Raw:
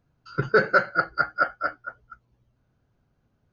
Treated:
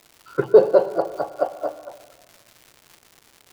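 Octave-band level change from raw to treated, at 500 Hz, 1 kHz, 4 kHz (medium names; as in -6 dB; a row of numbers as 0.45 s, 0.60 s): +10.0 dB, -4.0 dB, no reading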